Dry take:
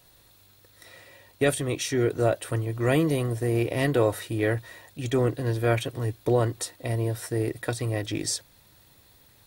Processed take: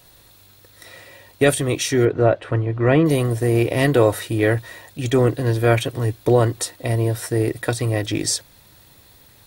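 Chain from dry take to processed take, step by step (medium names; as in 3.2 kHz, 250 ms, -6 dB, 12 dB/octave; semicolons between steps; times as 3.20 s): 2.05–3.06 s: low-pass 2.4 kHz 12 dB/octave; trim +7 dB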